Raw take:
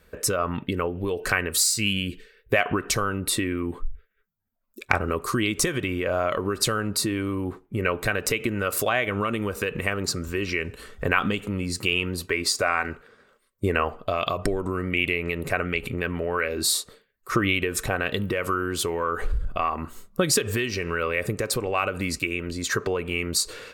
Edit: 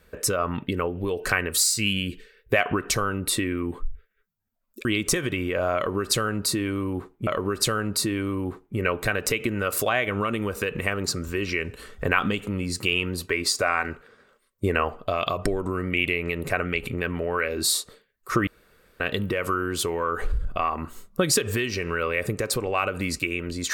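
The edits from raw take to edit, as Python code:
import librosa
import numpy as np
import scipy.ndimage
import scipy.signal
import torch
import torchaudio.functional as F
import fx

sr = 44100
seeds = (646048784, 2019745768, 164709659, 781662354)

y = fx.edit(x, sr, fx.cut(start_s=4.85, length_s=0.51),
    fx.repeat(start_s=6.27, length_s=1.51, count=2),
    fx.room_tone_fill(start_s=17.47, length_s=0.53), tone=tone)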